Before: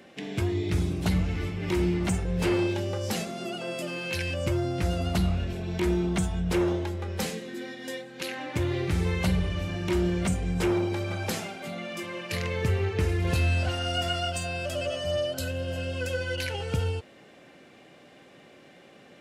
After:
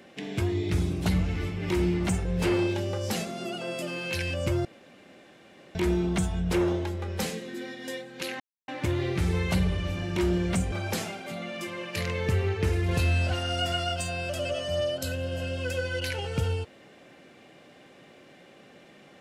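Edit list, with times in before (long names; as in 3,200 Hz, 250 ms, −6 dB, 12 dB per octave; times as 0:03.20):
0:04.65–0:05.75: fill with room tone
0:08.40: splice in silence 0.28 s
0:10.44–0:11.08: remove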